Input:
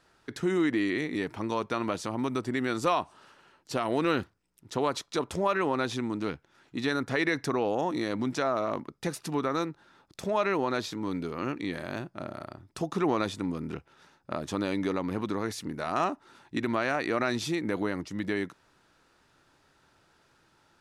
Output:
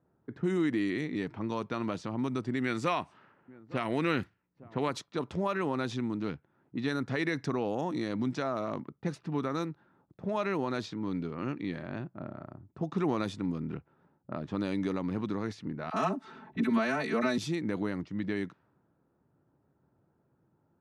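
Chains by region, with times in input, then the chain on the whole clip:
2.62–4.91 bell 2100 Hz +8.5 dB 0.76 oct + echo 0.86 s -19.5 dB
15.9–17.38 comb 4.6 ms, depth 96% + upward compressor, threshold -33 dBFS + dispersion lows, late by 41 ms, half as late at 790 Hz
whole clip: low-pass opened by the level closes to 670 Hz, open at -24 dBFS; HPF 120 Hz; tone controls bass +10 dB, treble +1 dB; gain -5.5 dB

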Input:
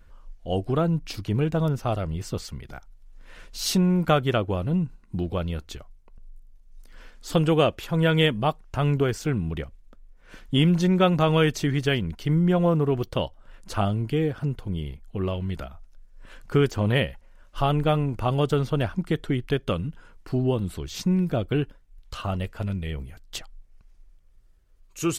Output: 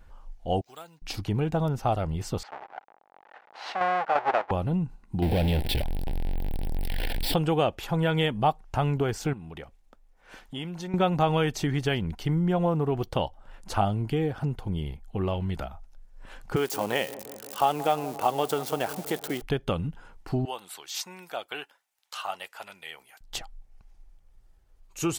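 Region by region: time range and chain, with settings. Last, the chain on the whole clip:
0.61–1.02 band-pass 5700 Hz, Q 1.4 + careless resampling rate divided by 4×, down none, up hold
2.43–4.51 half-waves squared off + Butterworth band-pass 1100 Hz, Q 0.74 + chopper 2.9 Hz, depth 60%, duty 75%
5.22–7.34 zero-crossing step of -33 dBFS + sample leveller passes 3 + fixed phaser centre 2900 Hz, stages 4
9.33–10.94 compressor 2:1, threshold -36 dBFS + low shelf 220 Hz -10.5 dB
16.56–19.42 switching spikes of -26 dBFS + HPF 340 Hz + dark delay 0.173 s, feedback 71%, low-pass 920 Hz, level -16.5 dB
20.45–23.21 HPF 1000 Hz + high shelf 6100 Hz +5.5 dB
whole clip: compressor 2:1, threshold -25 dBFS; bell 810 Hz +10 dB 0.37 oct

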